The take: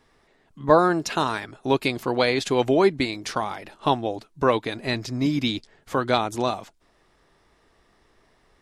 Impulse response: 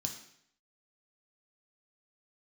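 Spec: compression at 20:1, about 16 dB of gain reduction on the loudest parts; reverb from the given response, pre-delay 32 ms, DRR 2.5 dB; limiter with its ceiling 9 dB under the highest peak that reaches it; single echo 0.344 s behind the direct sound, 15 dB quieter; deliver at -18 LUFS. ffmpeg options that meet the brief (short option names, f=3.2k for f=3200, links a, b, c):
-filter_complex "[0:a]acompressor=threshold=-26dB:ratio=20,alimiter=limit=-21dB:level=0:latency=1,aecho=1:1:344:0.178,asplit=2[a][b];[1:a]atrim=start_sample=2205,adelay=32[c];[b][c]afir=irnorm=-1:irlink=0,volume=-1dB[d];[a][d]amix=inputs=2:normalize=0,volume=12dB"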